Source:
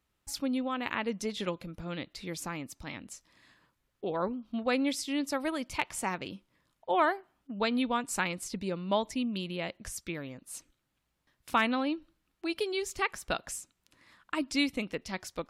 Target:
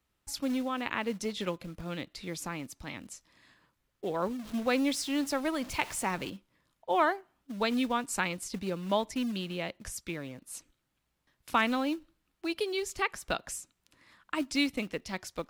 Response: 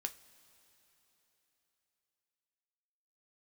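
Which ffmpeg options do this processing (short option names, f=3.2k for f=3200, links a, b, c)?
-filter_complex "[0:a]asettb=1/sr,asplit=3[a][b][c];[a]atrim=end=4.394[d];[b]atrim=start=4.39:end=6.3,asetpts=PTS-STARTPTS,afade=t=in:d=0.004:c=qsin,afade=t=out:st=1.906:d=0.004:c=qsin,aeval=exprs='val(0)+0.5*0.00891*sgn(val(0))':c=same[e];[c]atrim=start=6.296[f];[d][e]acrossfade=d=0.004:c1=hsin:c2=qsin[g];[g][f]acrossfade=d=0.004:c1=qsin:c2=hsin,acrossover=split=370|2200[h][i][j];[h]acrusher=bits=4:mode=log:mix=0:aa=0.000001[k];[k][i][j]amix=inputs=3:normalize=0"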